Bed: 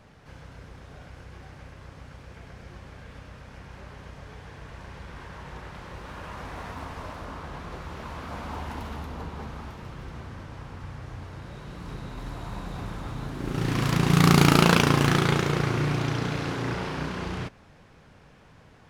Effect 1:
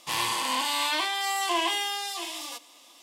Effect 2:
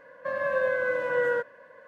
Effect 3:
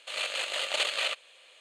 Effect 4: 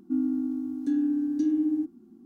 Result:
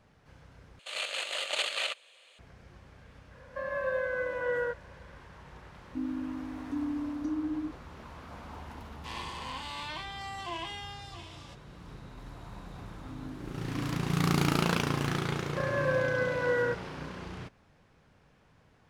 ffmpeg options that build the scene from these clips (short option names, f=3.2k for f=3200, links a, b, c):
-filter_complex "[2:a]asplit=2[a][b];[4:a]asplit=2[c][d];[0:a]volume=-9.5dB[e];[1:a]adynamicsmooth=sensitivity=1:basefreq=4.6k[f];[d]asplit=2[g][h];[h]afreqshift=1.9[i];[g][i]amix=inputs=2:normalize=1[j];[e]asplit=2[k][l];[k]atrim=end=0.794[m];[3:a]atrim=end=1.6,asetpts=PTS-STARTPTS,volume=-2.5dB[n];[l]atrim=start=2.386[o];[a]atrim=end=1.87,asetpts=PTS-STARTPTS,volume=-5.5dB,afade=t=in:d=0.004:c=hsin,afade=t=out:st=1.866:d=0.004:c=hsin,adelay=3310[p];[c]atrim=end=2.25,asetpts=PTS-STARTPTS,volume=-8dB,afade=t=in:d=0.004:c=hsin,afade=t=out:st=2.246:d=0.004:c=hsin,adelay=257985S[q];[f]atrim=end=3.02,asetpts=PTS-STARTPTS,volume=-11dB,afade=t=in:d=0.004:c=hsin,afade=t=out:st=3.016:d=0.004:c=hsin,adelay=8970[r];[j]atrim=end=2.25,asetpts=PTS-STARTPTS,volume=-15dB,afade=t=in:d=0.004:c=hsin,afade=t=out:st=2.246:d=0.004:c=hsin,adelay=12870[s];[b]atrim=end=1.87,asetpts=PTS-STARTPTS,volume=-3dB,afade=t=in:d=0.004:c=hsin,afade=t=out:st=1.866:d=0.004:c=hsin,adelay=15320[t];[m][n]acrossfade=d=0.004:c1=hsin:c2=hsin[u];[u][o]acrossfade=d=0.004:c1=hsin:c2=hsin[v];[v][p][q][r][s][t]amix=inputs=6:normalize=0"